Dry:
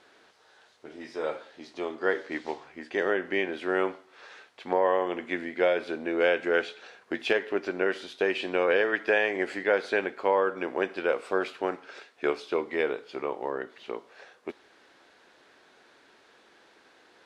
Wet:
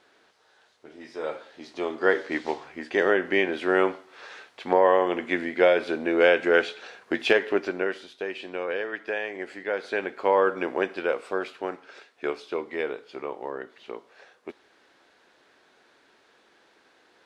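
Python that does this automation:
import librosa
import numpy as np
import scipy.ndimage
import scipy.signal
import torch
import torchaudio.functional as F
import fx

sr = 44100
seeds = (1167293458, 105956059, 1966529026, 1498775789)

y = fx.gain(x, sr, db=fx.line((0.94, -2.5), (2.04, 5.0), (7.53, 5.0), (8.16, -6.0), (9.58, -6.0), (10.46, 4.5), (11.47, -2.0)))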